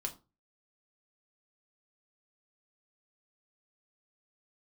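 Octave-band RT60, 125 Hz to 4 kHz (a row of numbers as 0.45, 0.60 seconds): 0.45, 0.35, 0.30, 0.30, 0.20, 0.20 seconds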